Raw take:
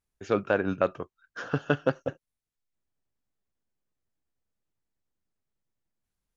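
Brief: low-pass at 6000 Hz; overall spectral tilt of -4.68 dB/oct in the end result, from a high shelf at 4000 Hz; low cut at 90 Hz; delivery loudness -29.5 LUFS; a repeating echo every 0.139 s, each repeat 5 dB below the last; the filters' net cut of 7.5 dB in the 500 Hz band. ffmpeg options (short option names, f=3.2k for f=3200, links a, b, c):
-af "highpass=90,lowpass=6k,equalizer=f=500:t=o:g=-9,highshelf=f=4k:g=7.5,aecho=1:1:139|278|417|556|695|834|973:0.562|0.315|0.176|0.0988|0.0553|0.031|0.0173,volume=2.5dB"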